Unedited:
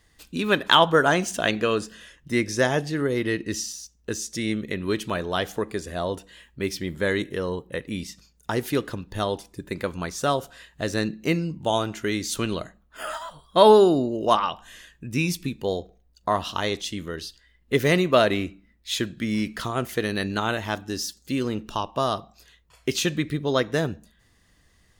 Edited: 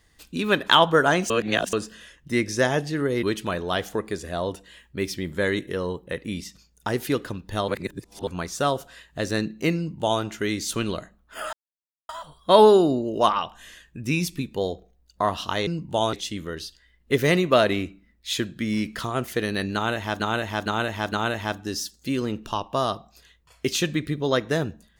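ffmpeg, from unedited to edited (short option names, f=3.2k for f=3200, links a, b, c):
-filter_complex "[0:a]asplit=12[a][b][c][d][e][f][g][h][i][j][k][l];[a]atrim=end=1.302[m];[b]atrim=start=1.298:end=1.732,asetpts=PTS-STARTPTS,areverse[n];[c]atrim=start=1.728:end=3.232[o];[d]atrim=start=4.858:end=9.312[p];[e]atrim=start=9.308:end=9.902,asetpts=PTS-STARTPTS,areverse[q];[f]atrim=start=9.898:end=13.16,asetpts=PTS-STARTPTS,afade=t=out:st=3.258:d=0.004:c=hsin,apad=pad_dur=0.56[r];[g]atrim=start=13.16:end=16.742,asetpts=PTS-STARTPTS,afade=t=in:d=0.004:c=hsin[s];[h]atrim=start=11.388:end=11.852[t];[i]atrim=start=16.738:end=20.812[u];[j]atrim=start=20.348:end=20.812[v];[k]atrim=start=20.348:end=20.812[w];[l]atrim=start=20.348[x];[m][n]acrossfade=d=0.004:c1=hsin:c2=hsin[y];[y][o]acrossfade=d=0.004:c1=hsin:c2=hsin[z];[z][p]acrossfade=d=0.004:c1=hsin:c2=hsin[aa];[aa][q]acrossfade=d=0.004:c1=hsin:c2=hsin[ab];[r][s]concat=n=2:v=0:a=1[ac];[ab][ac]acrossfade=d=0.004:c1=hsin:c2=hsin[ad];[ad][t]acrossfade=d=0.004:c1=hsin:c2=hsin[ae];[ae][u]acrossfade=d=0.004:c1=hsin:c2=hsin[af];[af][v]acrossfade=d=0.004:c1=hsin:c2=hsin[ag];[ag][w]acrossfade=d=0.004:c1=hsin:c2=hsin[ah];[ah][x]acrossfade=d=0.004:c1=hsin:c2=hsin"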